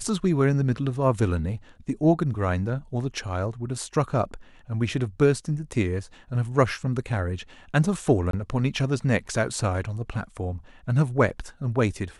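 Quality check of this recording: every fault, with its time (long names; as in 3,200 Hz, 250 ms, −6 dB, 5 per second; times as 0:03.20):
0:08.31–0:08.33: drop-out 23 ms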